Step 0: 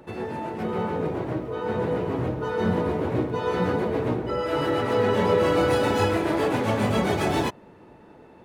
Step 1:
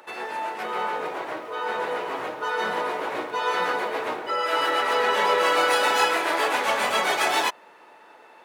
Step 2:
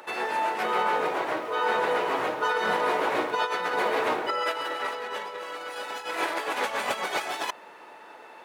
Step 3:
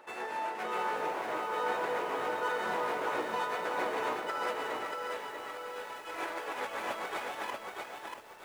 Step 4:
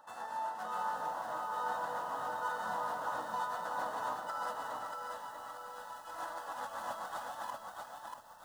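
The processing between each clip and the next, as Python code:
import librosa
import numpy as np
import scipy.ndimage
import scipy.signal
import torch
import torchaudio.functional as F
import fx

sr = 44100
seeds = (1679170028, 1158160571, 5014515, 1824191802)

y1 = scipy.signal.sosfilt(scipy.signal.butter(2, 920.0, 'highpass', fs=sr, output='sos'), x)
y1 = F.gain(torch.from_numpy(y1), 8.0).numpy()
y2 = fx.over_compress(y1, sr, threshold_db=-27.0, ratio=-0.5)
y3 = scipy.ndimage.median_filter(y2, 9, mode='constant')
y3 = fx.echo_crushed(y3, sr, ms=636, feedback_pct=35, bits=8, wet_db=-3)
y3 = F.gain(torch.from_numpy(y3), -8.5).numpy()
y4 = fx.fixed_phaser(y3, sr, hz=960.0, stages=4)
y4 = F.gain(torch.from_numpy(y4), -1.5).numpy()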